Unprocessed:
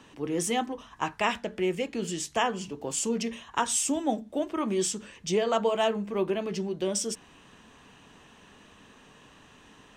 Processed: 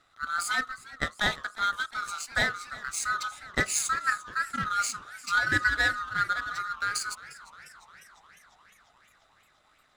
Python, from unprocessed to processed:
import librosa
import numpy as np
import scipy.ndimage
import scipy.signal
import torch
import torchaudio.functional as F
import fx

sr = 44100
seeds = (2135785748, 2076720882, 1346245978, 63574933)

y = fx.band_swap(x, sr, width_hz=1000)
y = fx.power_curve(y, sr, exponent=1.4)
y = fx.echo_warbled(y, sr, ms=352, feedback_pct=68, rate_hz=2.8, cents=132, wet_db=-18.5)
y = y * librosa.db_to_amplitude(3.5)